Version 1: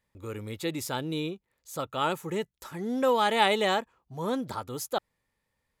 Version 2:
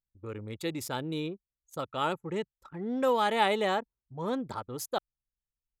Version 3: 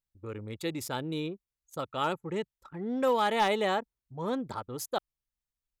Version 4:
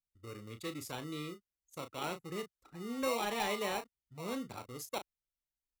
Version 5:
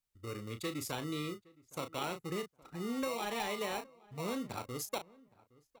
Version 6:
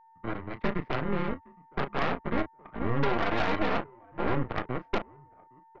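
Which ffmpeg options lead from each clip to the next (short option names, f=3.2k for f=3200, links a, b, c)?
-af "anlmdn=0.631,adynamicequalizer=threshold=0.00891:dfrequency=2200:dqfactor=0.7:tfrequency=2200:tqfactor=0.7:attack=5:release=100:ratio=0.375:range=3.5:mode=cutabove:tftype=highshelf,volume=-2dB"
-af "asoftclip=type=hard:threshold=-18.5dB"
-filter_complex "[0:a]acrossover=split=250|1100|6600[a][b][c][d];[b]acrusher=samples=27:mix=1:aa=0.000001[e];[a][e][c][d]amix=inputs=4:normalize=0,asplit=2[f][g];[g]adelay=34,volume=-9dB[h];[f][h]amix=inputs=2:normalize=0,volume=-7.5dB"
-filter_complex "[0:a]acompressor=threshold=-38dB:ratio=10,asplit=2[a][b];[b]adelay=816,lowpass=f=1.6k:p=1,volume=-23dB,asplit=2[c][d];[d]adelay=816,lowpass=f=1.6k:p=1,volume=0.22[e];[a][c][e]amix=inputs=3:normalize=0,volume=5dB"
-af "highpass=f=220:t=q:w=0.5412,highpass=f=220:t=q:w=1.307,lowpass=f=2.1k:t=q:w=0.5176,lowpass=f=2.1k:t=q:w=0.7071,lowpass=f=2.1k:t=q:w=1.932,afreqshift=-120,aeval=exprs='val(0)+0.000794*sin(2*PI*900*n/s)':c=same,aeval=exprs='0.0562*(cos(1*acos(clip(val(0)/0.0562,-1,1)))-cos(1*PI/2))+0.0224*(cos(6*acos(clip(val(0)/0.0562,-1,1)))-cos(6*PI/2))':c=same,volume=6.5dB"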